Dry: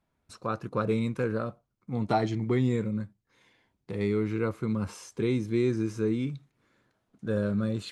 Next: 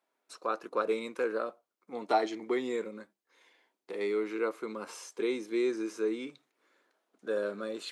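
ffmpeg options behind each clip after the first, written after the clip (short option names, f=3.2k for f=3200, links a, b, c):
-af "highpass=f=340:w=0.5412,highpass=f=340:w=1.3066"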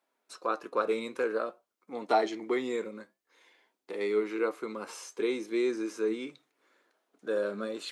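-af "flanger=delay=3.3:depth=5.4:regen=81:speed=0.51:shape=triangular,volume=6dB"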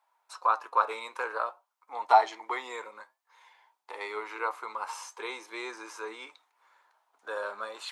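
-af "highpass=f=910:t=q:w=4.9"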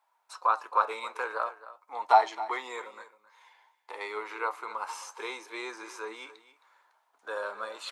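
-af "aecho=1:1:266:0.158"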